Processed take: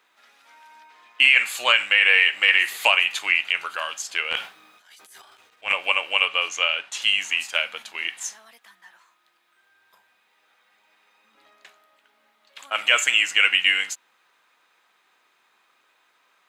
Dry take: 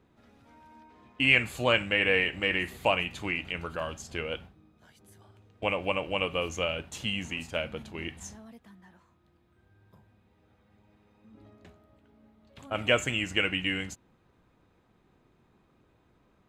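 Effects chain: high-pass 1.4 kHz 12 dB/octave; 4.31–5.73 s: transient shaper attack -11 dB, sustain +12 dB; 6.25–7.02 s: distance through air 50 m; loudness maximiser +15.5 dB; 2.48–3.19 s: three bands compressed up and down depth 70%; trim -2.5 dB

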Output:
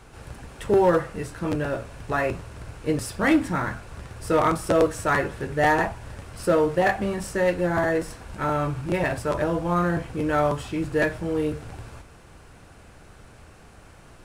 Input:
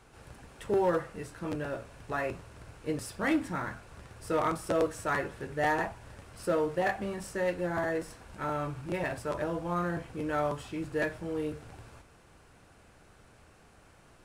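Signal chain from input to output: bass shelf 120 Hz +5 dB; trim +8 dB

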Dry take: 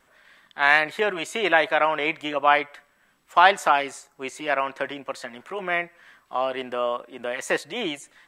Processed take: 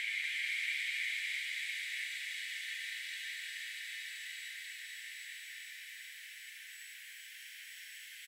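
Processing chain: recorder AGC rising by 18 dB/s; steep high-pass 2 kHz 48 dB/octave; compression 3:1, threshold -36 dBFS, peak gain reduction 13.5 dB; Paulstretch 27×, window 0.50 s, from 2.71 s; bouncing-ball echo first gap 240 ms, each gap 0.85×, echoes 5; trim +9 dB

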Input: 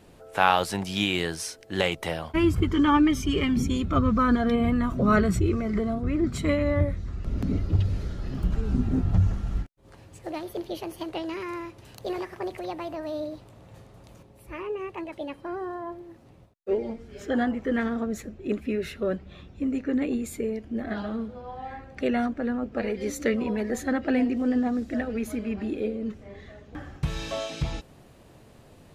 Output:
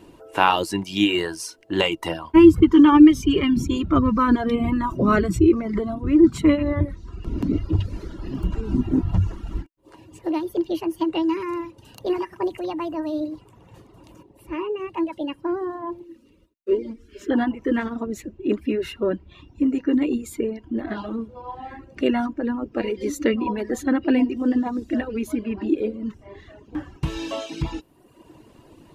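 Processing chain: reverb removal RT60 0.95 s; 16.04–17.31 s: static phaser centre 320 Hz, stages 4; small resonant body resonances 320/970/2800 Hz, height 13 dB, ringing for 45 ms; trim +1.5 dB

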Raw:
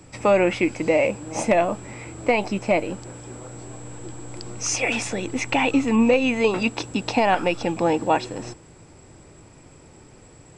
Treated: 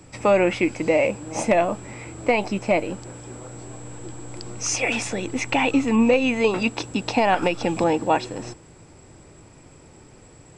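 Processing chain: 7.42–7.84 s: three bands compressed up and down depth 100%

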